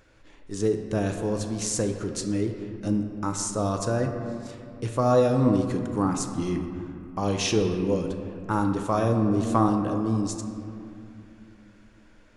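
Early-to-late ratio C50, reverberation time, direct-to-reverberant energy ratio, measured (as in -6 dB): 6.0 dB, 2.7 s, 4.0 dB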